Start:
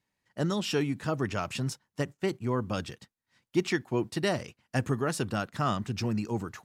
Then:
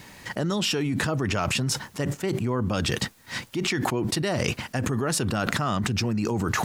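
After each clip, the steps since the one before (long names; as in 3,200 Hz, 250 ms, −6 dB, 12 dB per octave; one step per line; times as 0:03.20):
envelope flattener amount 100%
level −4.5 dB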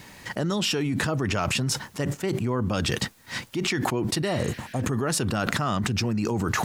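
healed spectral selection 0:04.29–0:04.79, 1,400–6,300 Hz both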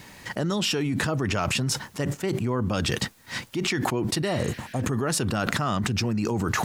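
no processing that can be heard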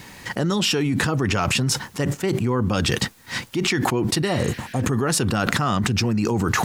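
notch filter 620 Hz, Q 12
level +4.5 dB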